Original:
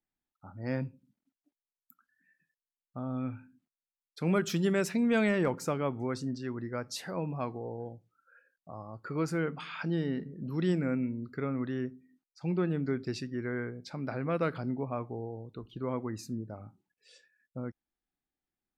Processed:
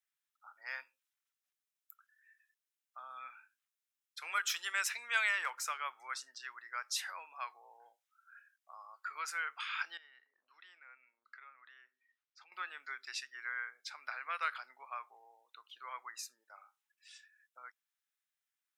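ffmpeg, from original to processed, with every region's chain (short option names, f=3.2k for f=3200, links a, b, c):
-filter_complex "[0:a]asettb=1/sr,asplit=3[a][b][c];[a]atrim=end=9.974[d];[b]atrim=start=9.97:end=12.52,asetpts=PTS-STARTPTS,afade=t=in:d=0.004:c=qsin,afade=t=out:st=2.546:d=0.004:c=qsin,lowpass=3.9k,acompressor=threshold=-48dB:ratio=3:attack=3.2:release=140:knee=1:detection=peak[e];[c]atrim=start=12.516[f];[d][e]acrossfade=d=0.004:c1=hsin:c2=qsin[g];[g][f]acrossfade=d=0.004:c1=qsin:c2=hsin,highpass=f=1.2k:w=0.5412,highpass=f=1.2k:w=1.3066,bandreject=f=4.5k:w=11,volume=3.5dB"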